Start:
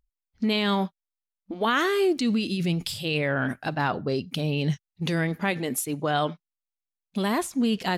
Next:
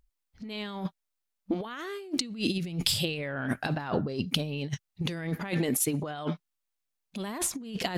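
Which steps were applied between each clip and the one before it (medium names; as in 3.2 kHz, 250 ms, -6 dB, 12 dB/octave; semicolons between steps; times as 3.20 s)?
compressor with a negative ratio -30 dBFS, ratio -0.5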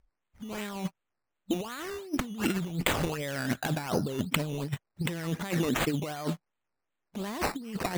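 decimation with a swept rate 11×, swing 60% 2.7 Hz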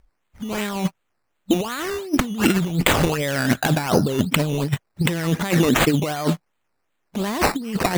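loudness maximiser +12 dB; trim -1 dB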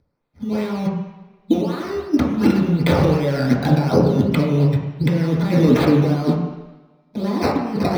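reverberation RT60 1.0 s, pre-delay 3 ms, DRR -5 dB; trim -13.5 dB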